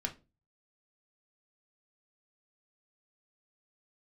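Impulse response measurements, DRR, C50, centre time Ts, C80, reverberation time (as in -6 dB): 1.5 dB, 16.0 dB, 9 ms, 23.5 dB, no single decay rate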